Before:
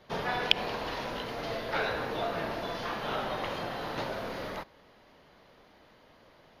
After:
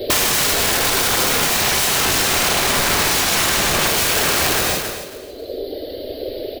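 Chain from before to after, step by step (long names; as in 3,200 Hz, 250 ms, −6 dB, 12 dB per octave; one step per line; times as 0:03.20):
loose part that buzzes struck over −50 dBFS, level −16 dBFS
0:01.62–0:03.87: RIAA equalisation playback
reverb reduction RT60 1.9 s
drawn EQ curve 100 Hz 0 dB, 170 Hz −21 dB, 270 Hz +6 dB, 420 Hz +11 dB, 610 Hz +7 dB, 1,000 Hz −28 dB, 4,400 Hz +7 dB, 6,700 Hz −24 dB, 13,000 Hz +12 dB
wrap-around overflow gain 36 dB
repeating echo 273 ms, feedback 23%, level −14 dB
reverb whose tail is shaped and stops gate 190 ms flat, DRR 0.5 dB
boost into a limiter +35 dB
level −7.5 dB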